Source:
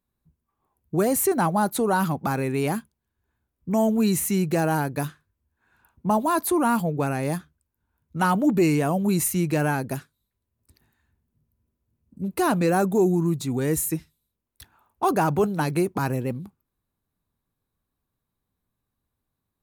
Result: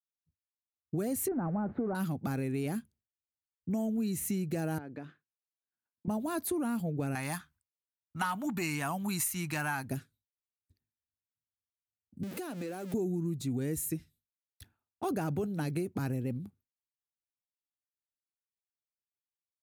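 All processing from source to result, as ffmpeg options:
-filter_complex "[0:a]asettb=1/sr,asplit=3[a][b][c];[a]atrim=end=1.284[d];[b]atrim=start=1.28:end=1.95,asetpts=PTS-STARTPTS,afade=t=in:d=0.004:c=qsin,afade=t=out:st=0.666:d=0.004:c=qsin,aeval=exprs='val(0)+0.5*0.0447*sgn(val(0))':c=same,lowpass=f=1.4k:w=0.5412,lowpass=f=1.4k:w=1.3066[e];[c]atrim=start=1.946[f];[d][e]acrossfade=d=0.004:c1=hsin:c2=qsin[g];[g][f]acrossfade=d=0.004:c1=qsin:c2=hsin,asettb=1/sr,asplit=3[h][i][j];[h]atrim=end=4.784[k];[i]atrim=start=4.78:end=6.08,asetpts=PTS-STARTPTS,afade=t=in:d=0.004:c=qsin,afade=t=out:st=1.296:d=0.004:c=qsin,acompressor=threshold=-29dB:ratio=6:attack=3.2:release=140:knee=1:detection=peak,highpass=240,lowpass=2.4k[l];[j]atrim=start=6.076[m];[k][l]acrossfade=d=0.004:c1=hsin:c2=qsin[n];[n][m]acrossfade=d=0.004:c1=qsin:c2=hsin,asettb=1/sr,asplit=3[o][p][q];[o]atrim=end=7.154[r];[p]atrim=start=7.15:end=9.89,asetpts=PTS-STARTPTS,afade=t=in:d=0.004:c=qsin,afade=t=out:st=2.736:d=0.004:c=qsin,lowshelf=f=680:t=q:w=3:g=-11.5,acontrast=59[s];[q]atrim=start=9.886[t];[r][s]acrossfade=d=0.004:c1=hsin:c2=qsin[u];[u][t]acrossfade=d=0.004:c1=qsin:c2=hsin,asettb=1/sr,asplit=3[v][w][x];[v]atrim=end=12.234[y];[w]atrim=start=12.23:end=12.94,asetpts=PTS-STARTPTS,afade=t=in:d=0.004:c=qsin,afade=t=out:st=0.706:d=0.004:c=qsin,aeval=exprs='val(0)+0.5*0.0447*sgn(val(0))':c=same,highpass=270,acompressor=threshold=-29dB:ratio=5:attack=3.2:release=140:knee=1:detection=peak[z];[x]atrim=start=12.936[aa];[y][z]acrossfade=d=0.004:c1=hsin:c2=qsin[ab];[ab][aa]acrossfade=d=0.004:c1=qsin:c2=hsin,agate=range=-33dB:threshold=-49dB:ratio=3:detection=peak,equalizer=f=100:t=o:w=0.67:g=9,equalizer=f=250:t=o:w=0.67:g=5,equalizer=f=1k:t=o:w=0.67:g=-9,acompressor=threshold=-22dB:ratio=6,volume=-7.5dB"

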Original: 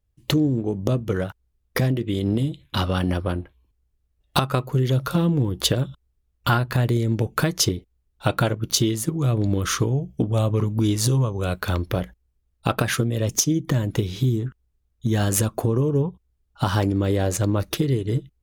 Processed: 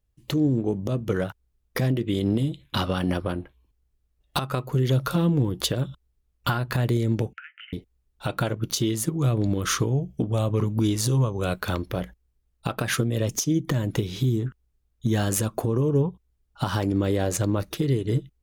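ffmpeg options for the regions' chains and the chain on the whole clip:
-filter_complex "[0:a]asettb=1/sr,asplit=3[a][b][c];[a]atrim=end=7.334[d];[b]atrim=start=7.33:end=7.73,asetpts=PTS-STARTPTS,afade=t=in:d=0.004:c=qsin,afade=t=out:st=0.396:d=0.004:c=qsin,asuperpass=centerf=2000:order=20:qfactor=1.2,acompressor=threshold=-40dB:ratio=4:attack=3.2:release=140:knee=1:detection=peak[e];[c]atrim=start=7.726[f];[d][e]acrossfade=d=0.004:c1=hsin:c2=qsin[g];[g][f]acrossfade=d=0.004:c1=qsin:c2=hsin,equalizer=f=83:w=3.8:g=-7,alimiter=limit=-13dB:level=0:latency=1:release=167"

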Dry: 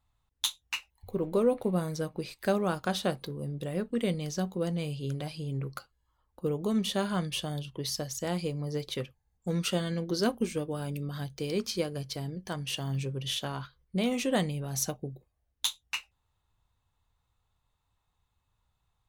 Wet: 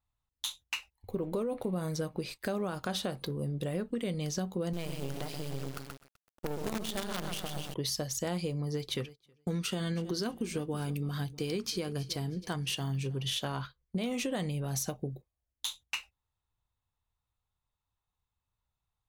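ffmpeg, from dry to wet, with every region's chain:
-filter_complex "[0:a]asettb=1/sr,asplit=3[a][b][c];[a]atrim=end=4.734[d];[b]atrim=start=4.73:end=7.74,asetpts=PTS-STARTPTS,afade=t=in:d=0.004:c=qsin,afade=t=out:st=3.006:d=0.004:c=qsin,lowshelf=f=110:g=-7,aecho=1:1:127|254|381|508|635|762|889:0.447|0.25|0.14|0.0784|0.0439|0.0246|0.0138,atrim=end_sample=132741,acrusher=bits=5:dc=4:mix=0:aa=0.000001[e];[c]atrim=start=7.736[f];[d][e]acrossfade=d=0.004:c1=hsin:c2=qsin[g];[g][f]acrossfade=d=0.004:c1=qsin:c2=hsin,asettb=1/sr,asplit=3[h][i][j];[h]atrim=end=8.624[k];[i]atrim=start=8.62:end=13.33,asetpts=PTS-STARTPTS,afade=t=in:d=0.004:c=qsin,afade=t=out:st=4.706:d=0.004:c=qsin,agate=range=-33dB:threshold=-46dB:ratio=3:release=100:detection=peak,equalizer=f=570:w=5.3:g=-8,aecho=1:1:318|636|954:0.0891|0.033|0.0122,atrim=end_sample=207711[l];[j]atrim=start=13.326[m];[k][l]acrossfade=d=0.004:c1=hsin:c2=qsin[n];[n][m]acrossfade=d=0.004:c1=qsin:c2=hsin,agate=range=-13dB:threshold=-47dB:ratio=16:detection=peak,alimiter=limit=-23dB:level=0:latency=1:release=65,acompressor=threshold=-33dB:ratio=6,volume=3dB"

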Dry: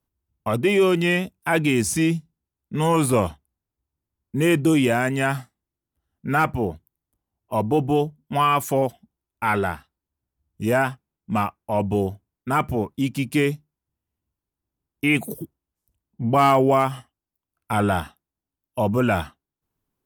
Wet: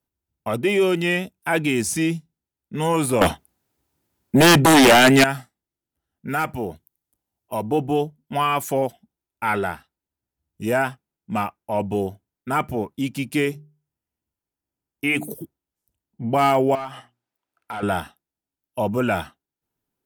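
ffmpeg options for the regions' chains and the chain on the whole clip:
-filter_complex "[0:a]asettb=1/sr,asplit=3[a][b][c];[a]atrim=end=3.214[d];[b]atrim=start=3.21:end=5.24,asetpts=PTS-STARTPTS,afade=t=in:d=0.004:c=qsin,afade=t=out:st=2.026:d=0.004:c=qsin,highpass=f=130:p=1,aeval=exprs='0.422*sin(PI/2*3.98*val(0)/0.422)':c=same[e];[c]atrim=start=5.236[f];[d][e]acrossfade=d=0.004:c1=hsin:c2=qsin[g];[g][f]acrossfade=d=0.004:c1=qsin:c2=hsin,asettb=1/sr,asplit=3[h][i][j];[h]atrim=end=6.284[k];[i]atrim=start=6.28:end=7.7,asetpts=PTS-STARTPTS,afade=t=in:d=0.004:c=qsin,afade=t=out:st=1.416:d=0.004:c=qsin,highshelf=f=3.6k:g=6.5,acompressor=threshold=-23dB:ratio=1.5:attack=3.2:release=140:knee=1:detection=peak[l];[j]atrim=start=7.696[m];[k][l]acrossfade=d=0.004:c1=hsin:c2=qsin[n];[n][m]acrossfade=d=0.004:c1=qsin:c2=hsin,asettb=1/sr,asplit=3[o][p][q];[o]atrim=end=13.454[r];[p]atrim=start=13.45:end=15.31,asetpts=PTS-STARTPTS,afade=t=in:d=0.004:c=qsin,afade=t=out:st=1.856:d=0.004:c=qsin,equalizer=f=3.8k:t=o:w=0.23:g=-5.5,bandreject=f=50:t=h:w=6,bandreject=f=100:t=h:w=6,bandreject=f=150:t=h:w=6,bandreject=f=200:t=h:w=6,bandreject=f=250:t=h:w=6,bandreject=f=300:t=h:w=6,bandreject=f=350:t=h:w=6,bandreject=f=400:t=h:w=6[s];[q]atrim=start=15.306[t];[r][s]acrossfade=d=0.004:c1=hsin:c2=qsin[u];[u][t]acrossfade=d=0.004:c1=qsin:c2=hsin,asettb=1/sr,asplit=3[v][w][x];[v]atrim=end=16.754[y];[w]atrim=start=16.75:end=17.83,asetpts=PTS-STARTPTS,afade=t=in:d=0.004:c=qsin,afade=t=out:st=1.076:d=0.004:c=qsin,bandreject=f=60:t=h:w=6,bandreject=f=120:t=h:w=6,bandreject=f=180:t=h:w=6,bandreject=f=240:t=h:w=6,bandreject=f=300:t=h:w=6,bandreject=f=360:t=h:w=6,asplit=2[z][aa];[aa]highpass=f=720:p=1,volume=18dB,asoftclip=type=tanh:threshold=-7.5dB[ab];[z][ab]amix=inputs=2:normalize=0,lowpass=f=2k:p=1,volume=-6dB,acompressor=threshold=-37dB:ratio=2:attack=3.2:release=140:knee=1:detection=peak[ac];[x]atrim=start=17.826[ad];[y][ac]acrossfade=d=0.004:c1=hsin:c2=qsin[ae];[ae][ad]acrossfade=d=0.004:c1=qsin:c2=hsin,lowshelf=f=120:g=-9,bandreject=f=1.1k:w=8.8"

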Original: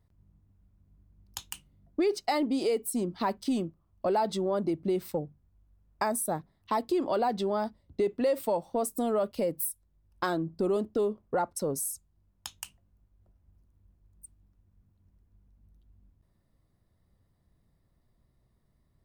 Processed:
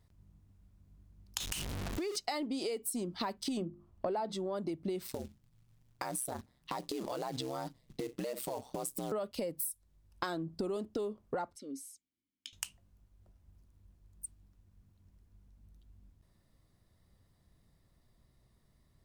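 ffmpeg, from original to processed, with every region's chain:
-filter_complex "[0:a]asettb=1/sr,asplit=3[a][b][c];[a]atrim=end=1.404[d];[b]atrim=start=1.4:end=2.16,asetpts=PTS-STARTPTS,afade=t=in:d=0.004:c=qsin,afade=t=out:st=0.756:d=0.004:c=qsin,aeval=exprs='val(0)+0.5*0.02*sgn(val(0))':c=same,acompressor=threshold=-35dB:ratio=2.5:attack=3.2:release=140:knee=1:detection=peak[e];[c]atrim=start=2.156[f];[d][e]acrossfade=d=0.004:c1=hsin:c2=qsin[g];[g][f]acrossfade=d=0.004:c1=qsin:c2=hsin,asettb=1/sr,asplit=3[h][i][j];[h]atrim=end=3.574[k];[i]atrim=start=3.57:end=4.35,asetpts=PTS-STARTPTS,afade=t=in:d=0.004:c=qsin,afade=t=out:st=0.776:d=0.004:c=qsin,highshelf=f=2.2k:g=-11.5,bandreject=f=50:t=h:w=6,bandreject=f=100:t=h:w=6,bandreject=f=150:t=h:w=6,bandreject=f=200:t=h:w=6,bandreject=f=250:t=h:w=6,bandreject=f=300:t=h:w=6,bandreject=f=350:t=h:w=6,acontrast=49[l];[j]atrim=start=4.346[m];[k][l]acrossfade=d=0.004:c1=hsin:c2=qsin[n];[n][m]acrossfade=d=0.004:c1=qsin:c2=hsin,asettb=1/sr,asplit=3[o][p][q];[o]atrim=end=5.074[r];[p]atrim=start=5.07:end=9.12,asetpts=PTS-STARTPTS,afade=t=in:d=0.004:c=qsin,afade=t=out:st=4.046:d=0.004:c=qsin,acompressor=threshold=-31dB:ratio=6:attack=3.2:release=140:knee=1:detection=peak,aeval=exprs='val(0)*sin(2*PI*64*n/s)':c=same,acrusher=bits=5:mode=log:mix=0:aa=0.000001[s];[q]atrim=start=9.116[t];[r][s]acrossfade=d=0.004:c1=hsin:c2=qsin[u];[u][t]acrossfade=d=0.004:c1=qsin:c2=hsin,asettb=1/sr,asplit=3[v][w][x];[v]atrim=end=11.564[y];[w]atrim=start=11.56:end=12.53,asetpts=PTS-STARTPTS,afade=t=in:d=0.004:c=qsin,afade=t=out:st=0.966:d=0.004:c=qsin,asplit=3[z][aa][ab];[z]bandpass=f=270:t=q:w=8,volume=0dB[ac];[aa]bandpass=f=2.29k:t=q:w=8,volume=-6dB[ad];[ab]bandpass=f=3.01k:t=q:w=8,volume=-9dB[ae];[ac][ad][ae]amix=inputs=3:normalize=0,bass=f=250:g=-9,treble=f=4k:g=8[af];[x]atrim=start=12.526[ag];[y][af]acrossfade=d=0.004:c1=hsin:c2=qsin[ah];[ah][ag]acrossfade=d=0.004:c1=qsin:c2=hsin,equalizer=f=5.6k:w=0.35:g=6.5,acompressor=threshold=-35dB:ratio=6,volume=1dB"

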